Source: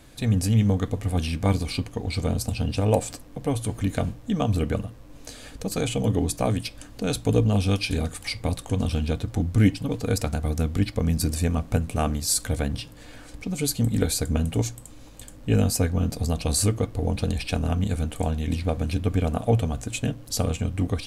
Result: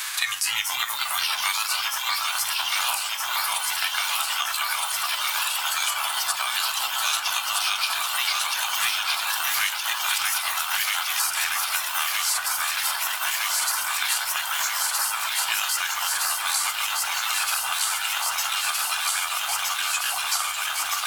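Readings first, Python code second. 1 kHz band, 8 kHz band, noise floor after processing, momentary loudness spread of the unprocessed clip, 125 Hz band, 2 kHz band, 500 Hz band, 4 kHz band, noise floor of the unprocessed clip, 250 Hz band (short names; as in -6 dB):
+8.5 dB, +8.0 dB, -30 dBFS, 9 LU, under -35 dB, +13.5 dB, -17.5 dB, +12.0 dB, -45 dBFS, under -35 dB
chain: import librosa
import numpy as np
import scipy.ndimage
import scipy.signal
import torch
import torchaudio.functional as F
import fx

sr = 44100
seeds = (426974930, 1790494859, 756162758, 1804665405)

y = fx.envelope_flatten(x, sr, power=0.6)
y = fx.echo_pitch(y, sr, ms=277, semitones=2, count=3, db_per_echo=-3.0)
y = fx.noise_reduce_blind(y, sr, reduce_db=10)
y = scipy.signal.sosfilt(scipy.signal.cheby2(4, 40, 520.0, 'highpass', fs=sr, output='sos'), y)
y = fx.echo_alternate(y, sr, ms=633, hz=1900.0, feedback_pct=86, wet_db=-2.5)
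y = fx.band_squash(y, sr, depth_pct=100)
y = y * librosa.db_to_amplitude(3.0)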